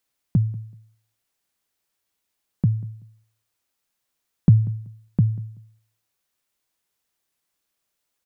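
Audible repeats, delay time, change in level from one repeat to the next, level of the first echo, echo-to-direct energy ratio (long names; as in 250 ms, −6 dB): 2, 190 ms, −13.5 dB, −20.5 dB, −20.5 dB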